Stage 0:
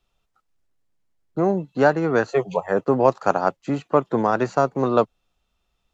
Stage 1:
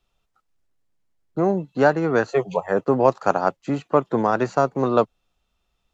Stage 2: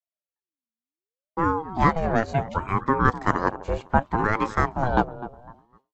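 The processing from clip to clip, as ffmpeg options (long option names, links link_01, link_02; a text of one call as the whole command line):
ffmpeg -i in.wav -af anull out.wav
ffmpeg -i in.wav -filter_complex "[0:a]asplit=2[link_01][link_02];[link_02]adelay=252,lowpass=frequency=910:poles=1,volume=-13dB,asplit=2[link_03][link_04];[link_04]adelay=252,lowpass=frequency=910:poles=1,volume=0.39,asplit=2[link_05][link_06];[link_06]adelay=252,lowpass=frequency=910:poles=1,volume=0.39,asplit=2[link_07][link_08];[link_08]adelay=252,lowpass=frequency=910:poles=1,volume=0.39[link_09];[link_01][link_03][link_05][link_07][link_09]amix=inputs=5:normalize=0,agate=range=-33dB:threshold=-44dB:ratio=3:detection=peak,aeval=exprs='val(0)*sin(2*PI*450*n/s+450*0.5/0.68*sin(2*PI*0.68*n/s))':channel_layout=same" out.wav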